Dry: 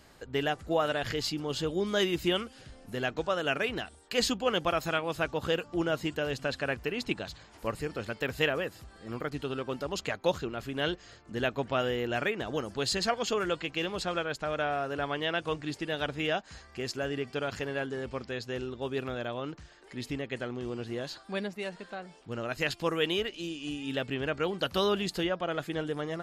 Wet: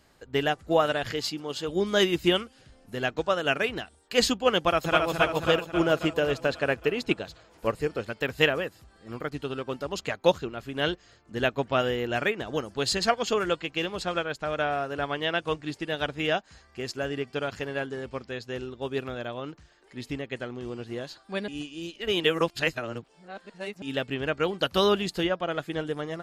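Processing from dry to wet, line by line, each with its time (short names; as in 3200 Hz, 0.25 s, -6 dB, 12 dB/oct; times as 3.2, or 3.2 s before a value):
1.09–1.67 HPF 110 Hz -> 390 Hz 6 dB/oct
4.57–5.1 echo throw 0.27 s, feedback 70%, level -3 dB
5.8–8.06 bell 450 Hz +4 dB
21.48–23.82 reverse
whole clip: upward expander 1.5:1, over -45 dBFS; gain +7 dB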